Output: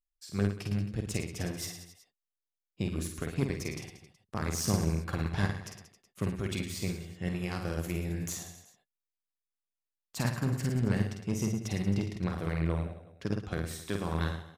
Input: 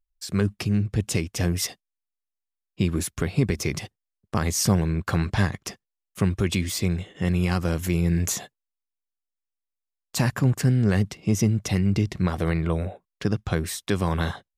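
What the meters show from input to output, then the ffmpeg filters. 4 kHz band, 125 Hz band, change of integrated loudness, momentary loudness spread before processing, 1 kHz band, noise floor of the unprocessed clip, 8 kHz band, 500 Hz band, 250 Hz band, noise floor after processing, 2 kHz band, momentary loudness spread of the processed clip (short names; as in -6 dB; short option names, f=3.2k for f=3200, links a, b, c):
-9.0 dB, -9.0 dB, -8.5 dB, 8 LU, -8.0 dB, under -85 dBFS, -9.5 dB, -8.0 dB, -8.5 dB, under -85 dBFS, -8.0 dB, 10 LU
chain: -af "aecho=1:1:50|110|182|268.4|372.1:0.631|0.398|0.251|0.158|0.1,aeval=exprs='0.631*(cos(1*acos(clip(val(0)/0.631,-1,1)))-cos(1*PI/2))+0.0398*(cos(7*acos(clip(val(0)/0.631,-1,1)))-cos(7*PI/2))':c=same,volume=-8.5dB"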